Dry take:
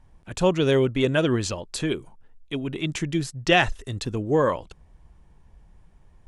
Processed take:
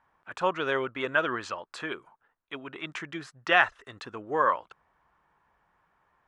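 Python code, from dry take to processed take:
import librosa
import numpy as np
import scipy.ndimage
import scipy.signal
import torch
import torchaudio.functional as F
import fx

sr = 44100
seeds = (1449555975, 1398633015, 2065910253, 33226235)

y = fx.bandpass_q(x, sr, hz=1300.0, q=2.2)
y = F.gain(torch.from_numpy(y), 6.0).numpy()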